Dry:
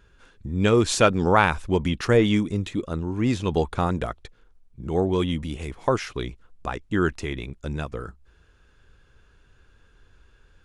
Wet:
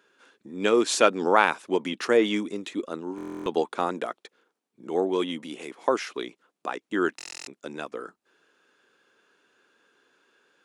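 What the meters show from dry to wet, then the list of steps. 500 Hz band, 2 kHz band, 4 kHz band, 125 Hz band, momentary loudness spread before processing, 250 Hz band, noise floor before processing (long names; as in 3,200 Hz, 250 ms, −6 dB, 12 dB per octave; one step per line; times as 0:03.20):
−1.0 dB, −1.0 dB, −1.0 dB, −19.5 dB, 15 LU, −5.0 dB, −58 dBFS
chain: high-pass filter 260 Hz 24 dB per octave
buffer that repeats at 0:03.16/0:07.17, samples 1,024, times 12
level −1 dB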